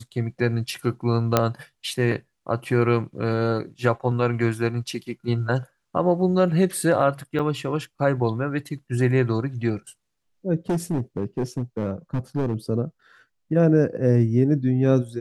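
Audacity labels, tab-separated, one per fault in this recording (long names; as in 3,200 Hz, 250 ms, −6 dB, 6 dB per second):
1.370000	1.370000	click −3 dBFS
7.390000	7.400000	drop-out 5.7 ms
10.690000	12.550000	clipping −19 dBFS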